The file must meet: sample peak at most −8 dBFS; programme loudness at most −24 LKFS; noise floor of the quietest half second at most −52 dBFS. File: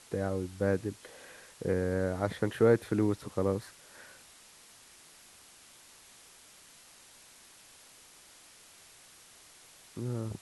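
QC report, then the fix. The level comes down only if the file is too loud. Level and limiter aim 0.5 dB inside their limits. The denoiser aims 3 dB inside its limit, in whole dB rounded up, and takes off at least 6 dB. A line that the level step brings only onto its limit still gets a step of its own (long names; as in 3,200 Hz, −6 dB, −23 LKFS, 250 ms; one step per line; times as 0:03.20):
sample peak −12.0 dBFS: in spec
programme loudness −31.5 LKFS: in spec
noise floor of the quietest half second −57 dBFS: in spec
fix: no processing needed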